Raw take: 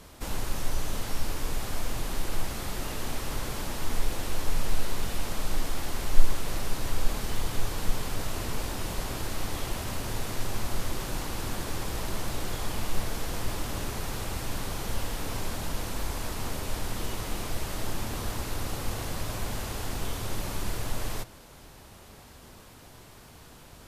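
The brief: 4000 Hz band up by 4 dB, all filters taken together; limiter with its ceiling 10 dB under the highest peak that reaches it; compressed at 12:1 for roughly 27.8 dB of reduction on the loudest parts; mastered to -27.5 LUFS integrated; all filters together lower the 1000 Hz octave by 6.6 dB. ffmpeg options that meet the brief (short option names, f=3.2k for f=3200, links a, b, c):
-af "equalizer=f=1k:t=o:g=-9,equalizer=f=4k:t=o:g=5.5,acompressor=threshold=-36dB:ratio=12,volume=21.5dB,alimiter=limit=-15.5dB:level=0:latency=1"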